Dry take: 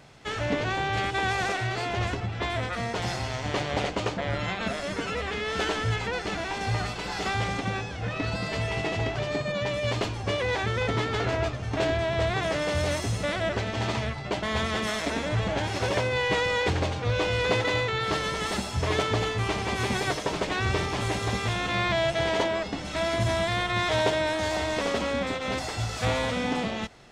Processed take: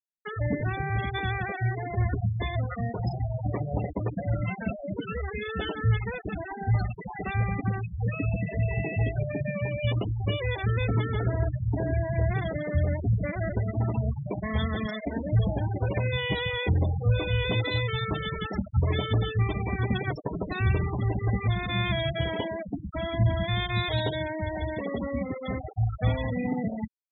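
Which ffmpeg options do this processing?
ffmpeg -i in.wav -filter_complex "[0:a]asettb=1/sr,asplit=3[link_01][link_02][link_03];[link_01]atrim=end=8.224[link_04];[link_02]atrim=start=8.22:end=8.76,asetpts=PTS-STARTPTS,afade=type=in:duration=0.004:curve=qsin,afade=type=out:start_time=0.536:duration=0.004:curve=qsin,lowpass=frequency=3400:poles=1[link_05];[link_03]atrim=start=8.756[link_06];[link_04][link_05]acrossfade=duration=0.004:curve1=hsin:curve2=qsin[link_07];[link_07][link_06]acrossfade=duration=0.004:curve1=qsin:curve2=hsin,afftfilt=real='re*gte(hypot(re,im),0.0891)':imag='im*gte(hypot(re,im),0.0891)':win_size=1024:overlap=0.75,acrossover=split=240|3000[link_08][link_09][link_10];[link_09]acompressor=threshold=-47dB:ratio=2[link_11];[link_08][link_11][link_10]amix=inputs=3:normalize=0,volume=5.5dB" out.wav

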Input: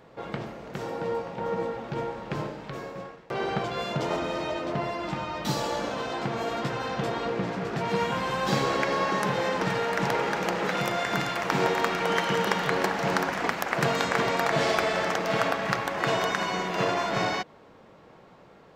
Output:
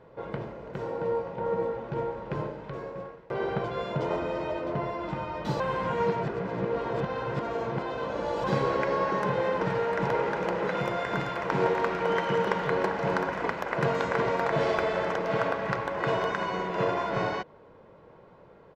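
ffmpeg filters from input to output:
ffmpeg -i in.wav -filter_complex "[0:a]asplit=3[link_01][link_02][link_03];[link_01]atrim=end=5.602[link_04];[link_02]atrim=start=5.598:end=8.442,asetpts=PTS-STARTPTS,areverse[link_05];[link_03]atrim=start=8.438[link_06];[link_04][link_05]acrossfade=duration=0.004:curve1=hsin:curve2=hsin[link_07];[link_07][link_06]acrossfade=duration=0.004:curve1=hsin:curve2=hsin,lowpass=frequency=1200:poles=1,aecho=1:1:2:0.34" out.wav

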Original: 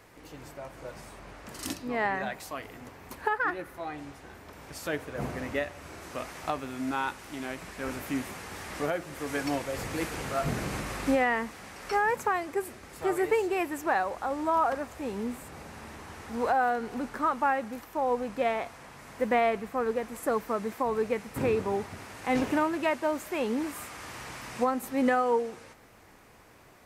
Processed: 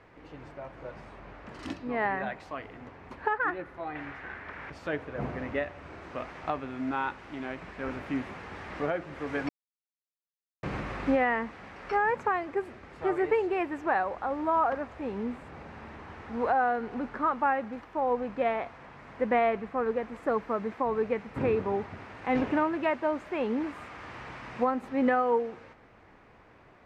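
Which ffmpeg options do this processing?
ffmpeg -i in.wav -filter_complex "[0:a]asettb=1/sr,asplit=3[link_01][link_02][link_03];[link_01]atrim=end=3.954[link_04];[link_02]atrim=start=3.95:end=4.7,asetpts=PTS-STARTPTS,afade=type=in:duration=0.004:curve=qsin,afade=type=out:start_time=0.746:duration=0.004:curve=qsin,equalizer=frequency=1800:width_type=o:width=1.4:gain=14[link_05];[link_03]atrim=start=4.696[link_06];[link_04][link_05]acrossfade=duration=0.004:curve1=hsin:curve2=qsin[link_07];[link_07][link_06]acrossfade=duration=0.004:curve1=qsin:curve2=hsin,asplit=3[link_08][link_09][link_10];[link_08]atrim=end=9.49,asetpts=PTS-STARTPTS,afade=type=out:start_time=9.486:duration=0.004:curve=hsin[link_11];[link_09]atrim=start=9.49:end=10.63,asetpts=PTS-STARTPTS,volume=0[link_12];[link_10]atrim=start=10.63,asetpts=PTS-STARTPTS,afade=type=in:duration=0.004:curve=hsin[link_13];[link_11][link_12][link_13]concat=n=3:v=0:a=1,lowpass=2600" out.wav

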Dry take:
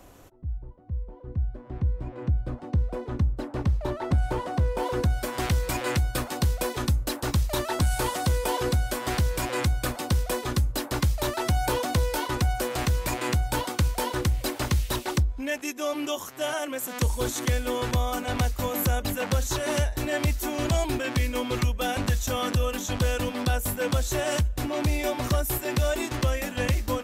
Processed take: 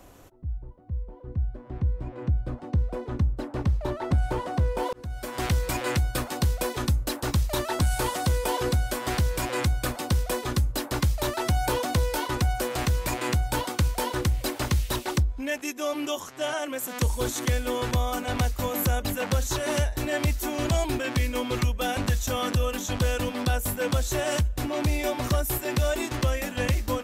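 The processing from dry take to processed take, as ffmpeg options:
ffmpeg -i in.wav -filter_complex "[0:a]asettb=1/sr,asplit=3[link_01][link_02][link_03];[link_01]atrim=end=16.204[link_04];[link_02]atrim=start=16.2:end=16.65,asetpts=PTS-STARTPTS,afade=type=in:duration=0.004:curve=qsin,afade=type=out:start_time=0.446:duration=0.004:curve=qsin,lowpass=8600[link_05];[link_03]atrim=start=16.646[link_06];[link_04][link_05]acrossfade=duration=0.004:curve1=hsin:curve2=qsin[link_07];[link_07][link_06]acrossfade=duration=0.004:curve1=qsin:curve2=hsin,asplit=2[link_08][link_09];[link_08]atrim=end=4.93,asetpts=PTS-STARTPTS,afade=type=out:start_time=4.926:duration=0.004:curve=hsin[link_10];[link_09]atrim=start=4.93,asetpts=PTS-STARTPTS,afade=type=in:duration=0.53[link_11];[link_10][link_11]concat=n=2:v=0:a=1" out.wav

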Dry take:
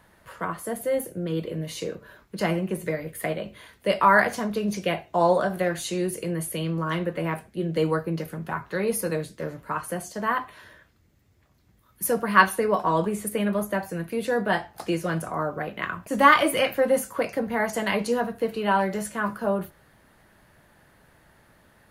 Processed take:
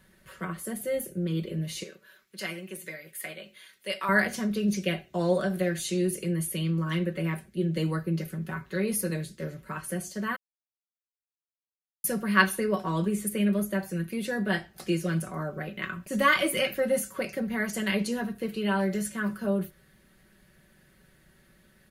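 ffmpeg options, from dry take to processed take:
ffmpeg -i in.wav -filter_complex "[0:a]asettb=1/sr,asplit=3[link_01][link_02][link_03];[link_01]atrim=end=1.834[link_04];[link_02]atrim=start=1.83:end=4.09,asetpts=PTS-STARTPTS,afade=type=in:duration=0.004:curve=qsin,afade=type=out:start_time=2.256:duration=0.004:curve=qsin,highpass=frequency=1200:poles=1[link_05];[link_03]atrim=start=4.086[link_06];[link_04][link_05]acrossfade=duration=0.004:curve1=hsin:curve2=qsin[link_07];[link_07][link_06]acrossfade=duration=0.004:curve1=qsin:curve2=hsin,asplit=3[link_08][link_09][link_10];[link_08]atrim=end=10.36,asetpts=PTS-STARTPTS,afade=type=out:start_time=10.356:duration=0.004:curve=hsin[link_11];[link_09]atrim=start=10.36:end=12.04,asetpts=PTS-STARTPTS,volume=0[link_12];[link_10]atrim=start=12.04,asetpts=PTS-STARTPTS,afade=type=in:duration=0.004:curve=hsin[link_13];[link_11][link_12][link_13]concat=n=3:v=0:a=1,equalizer=frequency=880:width=1.2:gain=-13,aecho=1:1:5.3:0.56,volume=-1.5dB" out.wav

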